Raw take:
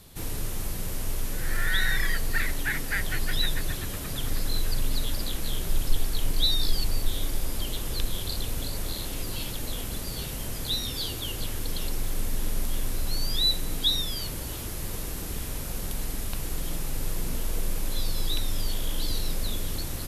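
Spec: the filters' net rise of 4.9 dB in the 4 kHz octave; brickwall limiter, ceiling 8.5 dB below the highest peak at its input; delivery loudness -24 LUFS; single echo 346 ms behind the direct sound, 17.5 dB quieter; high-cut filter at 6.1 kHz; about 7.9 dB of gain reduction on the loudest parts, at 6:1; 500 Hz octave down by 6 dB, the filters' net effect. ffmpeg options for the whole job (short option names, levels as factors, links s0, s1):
-af "lowpass=6100,equalizer=f=500:t=o:g=-8,equalizer=f=4000:t=o:g=6,acompressor=threshold=0.0708:ratio=6,alimiter=limit=0.0944:level=0:latency=1,aecho=1:1:346:0.133,volume=2.82"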